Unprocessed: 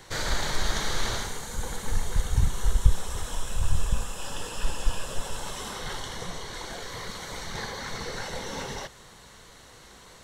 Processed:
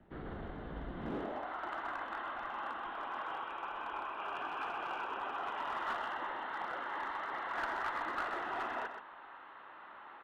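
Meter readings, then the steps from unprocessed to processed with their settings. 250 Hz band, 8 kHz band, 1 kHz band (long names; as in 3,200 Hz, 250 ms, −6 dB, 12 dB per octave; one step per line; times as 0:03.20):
−6.5 dB, below −30 dB, +1.0 dB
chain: band-pass filter sweep 220 Hz → 1,300 Hz, 0:00.92–0:01.52
single-sideband voice off tune −160 Hz 210–3,300 Hz
asymmetric clip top −39.5 dBFS
parametric band 97 Hz −6 dB 2 octaves
single-tap delay 127 ms −8 dB
level +6 dB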